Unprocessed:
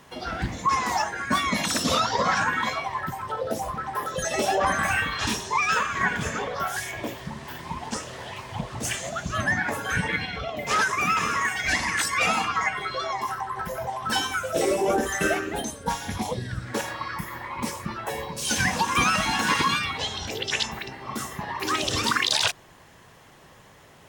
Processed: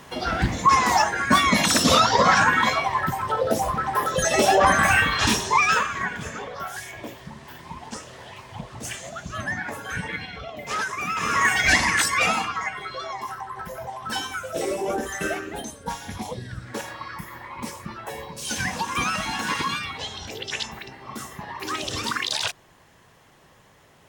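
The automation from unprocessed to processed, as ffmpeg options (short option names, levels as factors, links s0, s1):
-af "volume=7.94,afade=t=out:st=5.49:d=0.58:silence=0.298538,afade=t=in:st=11.15:d=0.39:silence=0.251189,afade=t=out:st=11.54:d=1.04:silence=0.281838"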